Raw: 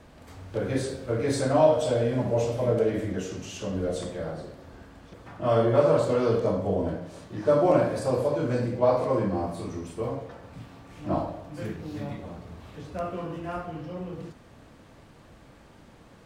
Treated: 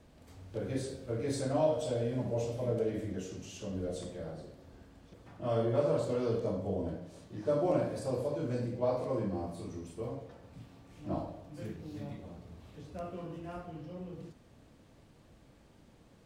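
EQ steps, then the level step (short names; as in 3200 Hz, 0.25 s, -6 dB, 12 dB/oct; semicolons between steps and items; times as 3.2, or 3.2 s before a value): bell 1300 Hz -6 dB 1.9 oct; -7.0 dB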